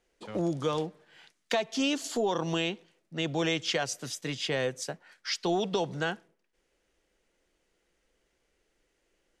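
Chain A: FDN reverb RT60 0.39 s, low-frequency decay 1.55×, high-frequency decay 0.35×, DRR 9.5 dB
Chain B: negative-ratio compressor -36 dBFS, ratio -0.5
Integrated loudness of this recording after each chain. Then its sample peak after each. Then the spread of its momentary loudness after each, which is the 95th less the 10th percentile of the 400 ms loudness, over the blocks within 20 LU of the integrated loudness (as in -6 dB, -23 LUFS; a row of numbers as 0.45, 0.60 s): -30.0, -36.5 LUFS; -14.5, -18.5 dBFS; 11, 10 LU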